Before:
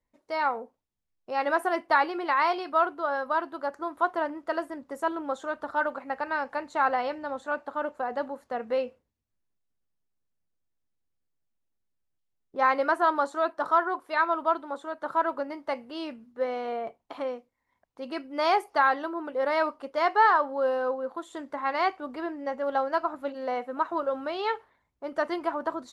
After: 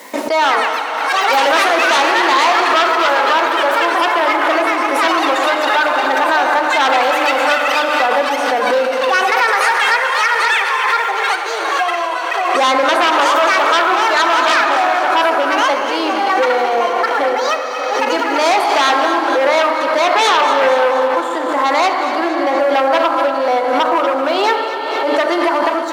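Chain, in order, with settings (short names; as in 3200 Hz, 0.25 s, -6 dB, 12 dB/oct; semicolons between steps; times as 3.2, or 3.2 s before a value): echoes that change speed 0.207 s, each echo +6 st, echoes 3, each echo -6 dB; sample leveller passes 1; Schroeder reverb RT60 3.1 s, combs from 26 ms, DRR 7.5 dB; in parallel at -3 dB: limiter -17.5 dBFS, peak gain reduction 9.5 dB; on the sum: sine folder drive 7 dB, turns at -7.5 dBFS; Bessel high-pass 380 Hz, order 8; notches 60/120/180/240/300/360/420/480/540/600 Hz; on a send: echo with dull and thin repeats by turns 0.118 s, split 1300 Hz, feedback 76%, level -8 dB; on the sum: backwards sustainer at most 27 dB/s; gain -1.5 dB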